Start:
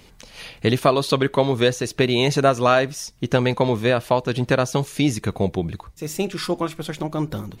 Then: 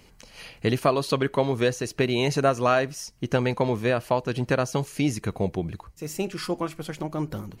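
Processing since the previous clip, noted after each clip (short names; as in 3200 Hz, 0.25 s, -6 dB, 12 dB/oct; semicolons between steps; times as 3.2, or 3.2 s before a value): notch 3600 Hz, Q 7; gain -4.5 dB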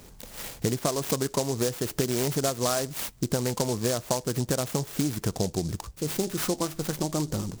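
compressor, threshold -29 dBFS, peak gain reduction 13 dB; noise-modulated delay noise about 6000 Hz, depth 0.12 ms; gain +5.5 dB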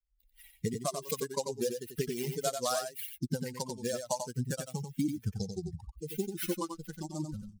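per-bin expansion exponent 3; echo 91 ms -6.5 dB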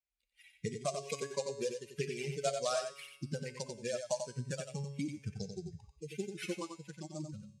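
speaker cabinet 100–8500 Hz, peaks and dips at 260 Hz -7 dB, 610 Hz +6 dB, 910 Hz -8 dB, 2400 Hz +10 dB; resonator 140 Hz, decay 1 s, harmonics all, mix 70%; gain +5.5 dB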